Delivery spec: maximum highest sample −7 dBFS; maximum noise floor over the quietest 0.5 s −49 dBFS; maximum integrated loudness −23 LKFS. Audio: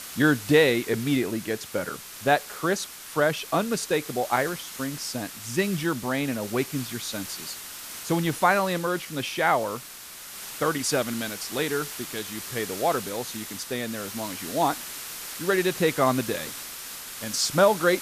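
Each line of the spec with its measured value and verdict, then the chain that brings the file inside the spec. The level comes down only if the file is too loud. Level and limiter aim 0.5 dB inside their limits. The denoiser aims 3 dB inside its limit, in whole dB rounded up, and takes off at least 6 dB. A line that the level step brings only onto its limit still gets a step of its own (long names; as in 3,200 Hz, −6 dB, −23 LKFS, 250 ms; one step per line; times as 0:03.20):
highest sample −8.0 dBFS: in spec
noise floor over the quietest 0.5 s −42 dBFS: out of spec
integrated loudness −26.5 LKFS: in spec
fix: broadband denoise 10 dB, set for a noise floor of −42 dBFS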